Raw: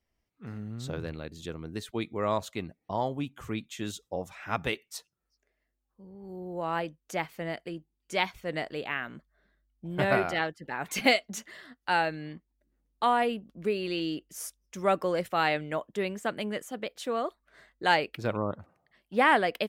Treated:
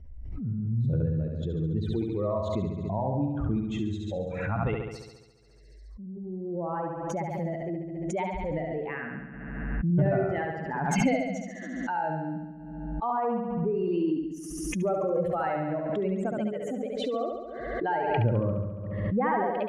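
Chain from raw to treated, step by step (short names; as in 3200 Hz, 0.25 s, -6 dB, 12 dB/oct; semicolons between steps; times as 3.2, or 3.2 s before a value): spectral contrast raised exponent 2; compressor 1.5:1, threshold -32 dBFS, peak gain reduction 5.5 dB; RIAA curve playback; flutter echo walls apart 11.9 m, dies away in 1.1 s; backwards sustainer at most 33 dB/s; gain -2 dB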